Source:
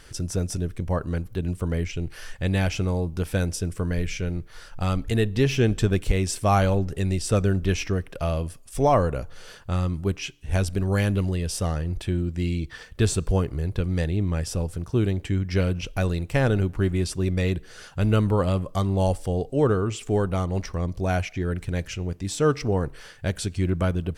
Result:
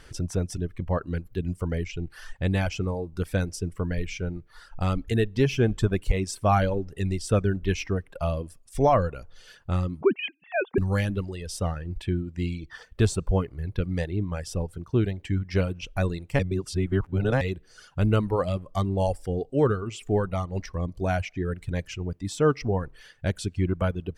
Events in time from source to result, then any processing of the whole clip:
10.01–10.78 sine-wave speech
16.39–17.41 reverse
whole clip: reverb removal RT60 1.7 s; high shelf 4400 Hz -7 dB

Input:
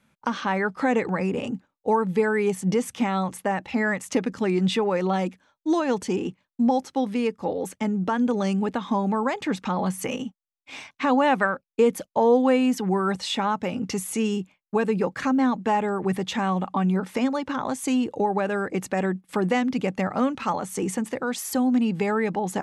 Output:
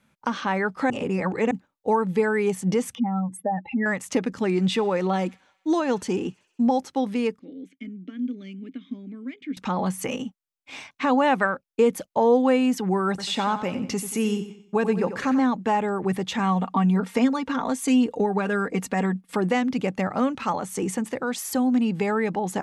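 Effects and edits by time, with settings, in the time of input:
0.9–1.51 reverse
2.95–3.86 spectral contrast raised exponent 2.6
4.37–6.67 thin delay 64 ms, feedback 72%, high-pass 1700 Hz, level -23.5 dB
7.39–9.57 vowel filter i
13.09–15.4 feedback echo 91 ms, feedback 38%, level -11 dB
16.39–19.36 comb 4.3 ms, depth 62%

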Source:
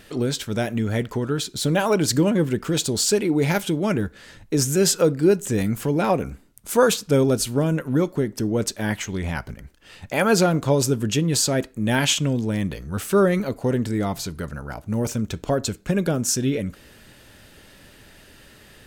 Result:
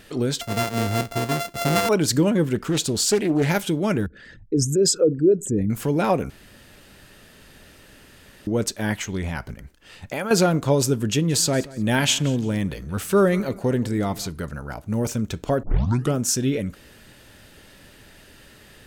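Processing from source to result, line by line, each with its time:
0.41–1.89 sample sorter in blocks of 64 samples
2.55–3.49 Doppler distortion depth 0.28 ms
4.06–5.7 formant sharpening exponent 2
6.3–8.47 room tone
9.22–10.31 compressor, threshold -23 dBFS
11.1–14.28 feedback echo 0.176 s, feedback 29%, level -20 dB
15.63 tape start 0.52 s

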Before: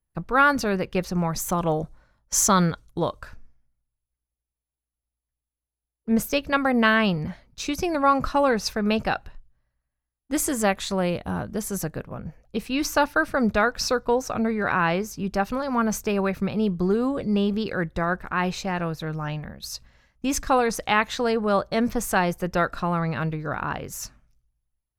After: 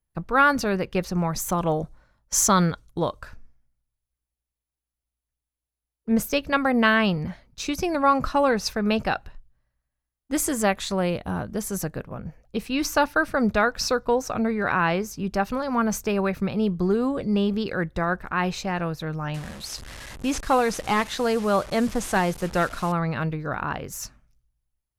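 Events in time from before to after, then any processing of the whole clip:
19.34–22.92 delta modulation 64 kbps, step -33.5 dBFS

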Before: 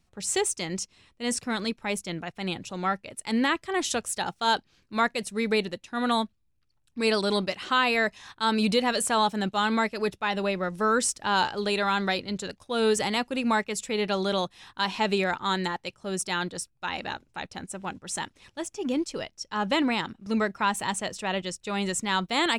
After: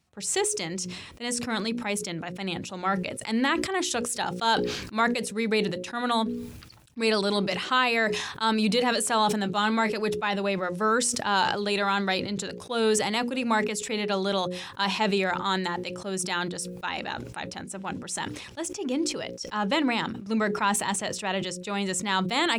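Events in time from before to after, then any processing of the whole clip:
9.43–9.97 doubler 19 ms -13 dB
whole clip: HPF 75 Hz; notches 60/120/180/240/300/360/420/480/540 Hz; sustainer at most 52 dB/s

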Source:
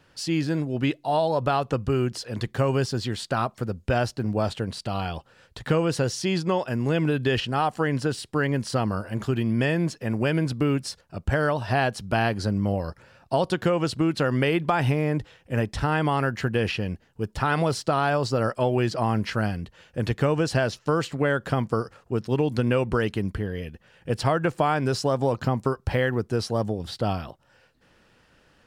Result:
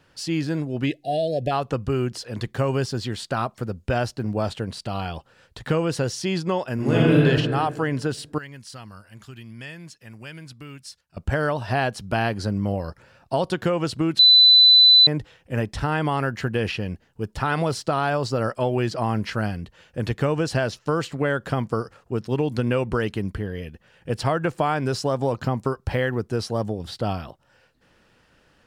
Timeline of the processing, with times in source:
0.86–1.51 spectral delete 770–1600 Hz
6.74–7.26 reverb throw, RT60 1.7 s, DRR -6 dB
8.38–11.17 passive tone stack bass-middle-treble 5-5-5
14.19–15.07 bleep 4000 Hz -9 dBFS

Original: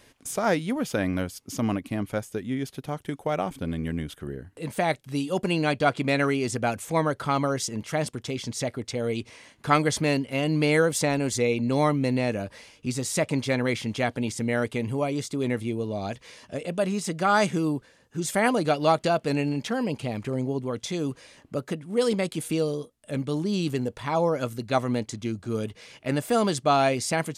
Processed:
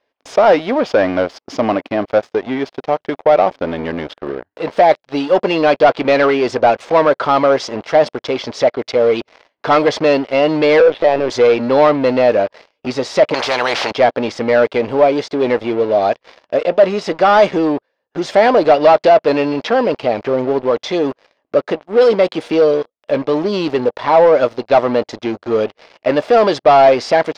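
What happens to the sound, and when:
10.8–11.3 LPC vocoder at 8 kHz pitch kept
13.34–13.91 spectral compressor 4:1
whole clip: low shelf 250 Hz -10.5 dB; sample leveller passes 5; EQ curve 160 Hz 0 dB, 600 Hz +15 dB, 1300 Hz +8 dB, 5200 Hz +1 dB, 7600 Hz -17 dB, 11000 Hz -27 dB; gain -10.5 dB

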